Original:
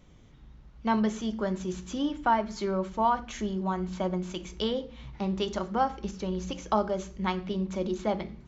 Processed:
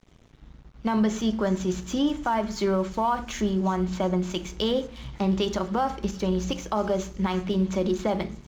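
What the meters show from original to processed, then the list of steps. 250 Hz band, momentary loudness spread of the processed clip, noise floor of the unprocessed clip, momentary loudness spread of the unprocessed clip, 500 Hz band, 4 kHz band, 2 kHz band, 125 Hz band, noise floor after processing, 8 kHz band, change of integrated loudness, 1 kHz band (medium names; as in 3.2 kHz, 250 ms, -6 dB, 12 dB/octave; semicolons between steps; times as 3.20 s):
+5.0 dB, 4 LU, -54 dBFS, 8 LU, +4.5 dB, +5.0 dB, +2.0 dB, +6.0 dB, -53 dBFS, no reading, +4.0 dB, +0.5 dB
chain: peak limiter -22 dBFS, peak gain reduction 10 dB; feedback echo behind a high-pass 358 ms, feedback 55%, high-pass 3.9 kHz, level -15 dB; crossover distortion -55.5 dBFS; trim +7 dB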